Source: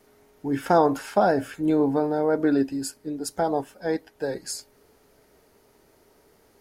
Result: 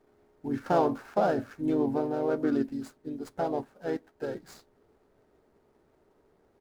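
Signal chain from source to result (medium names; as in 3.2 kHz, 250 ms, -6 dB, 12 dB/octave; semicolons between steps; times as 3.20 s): median filter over 15 samples; harmony voices -3 st -6 dB; trim -6.5 dB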